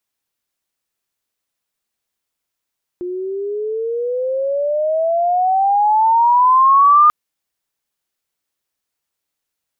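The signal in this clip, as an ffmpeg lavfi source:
ffmpeg -f lavfi -i "aevalsrc='pow(10,(-6+15.5*(t/4.09-1))/20)*sin(2*PI*353*4.09/(21.5*log(2)/12)*(exp(21.5*log(2)/12*t/4.09)-1))':duration=4.09:sample_rate=44100" out.wav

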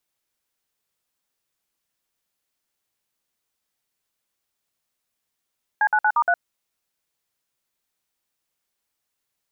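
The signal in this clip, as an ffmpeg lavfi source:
ffmpeg -f lavfi -i "aevalsrc='0.126*clip(min(mod(t,0.117),0.062-mod(t,0.117))/0.002,0,1)*(eq(floor(t/0.117),0)*(sin(2*PI*852*mod(t,0.117))+sin(2*PI*1633*mod(t,0.117)))+eq(floor(t/0.117),1)*(sin(2*PI*852*mod(t,0.117))+sin(2*PI*1477*mod(t,0.117)))+eq(floor(t/0.117),2)*(sin(2*PI*852*mod(t,0.117))+sin(2*PI*1477*mod(t,0.117)))+eq(floor(t/0.117),3)*(sin(2*PI*941*mod(t,0.117))+sin(2*PI*1209*mod(t,0.117)))+eq(floor(t/0.117),4)*(sin(2*PI*697*mod(t,0.117))+sin(2*PI*1477*mod(t,0.117))))':duration=0.585:sample_rate=44100" out.wav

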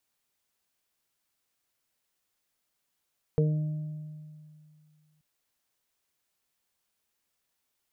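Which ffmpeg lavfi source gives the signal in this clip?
ffmpeg -f lavfi -i "aevalsrc='0.0891*pow(10,-3*t/2.35)*sin(2*PI*153*t)+0.0188*pow(10,-3*t/1.3)*sin(2*PI*306*t)+0.0841*pow(10,-3*t/0.33)*sin(2*PI*459*t)+0.00891*pow(10,-3*t/1.67)*sin(2*PI*612*t)':duration=1.83:sample_rate=44100" out.wav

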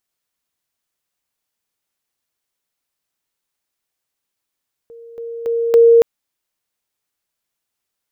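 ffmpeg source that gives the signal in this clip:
ffmpeg -f lavfi -i "aevalsrc='pow(10,(-35.5+10*floor(t/0.28))/20)*sin(2*PI*464*t)':duration=1.12:sample_rate=44100" out.wav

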